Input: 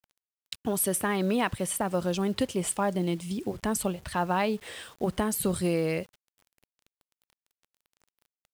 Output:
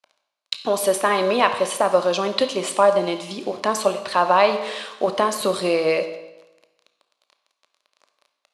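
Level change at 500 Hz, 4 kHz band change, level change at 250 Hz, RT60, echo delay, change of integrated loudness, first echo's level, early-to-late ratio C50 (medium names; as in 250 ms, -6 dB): +11.5 dB, +11.5 dB, 0.0 dB, 0.95 s, no echo, +8.0 dB, no echo, 9.5 dB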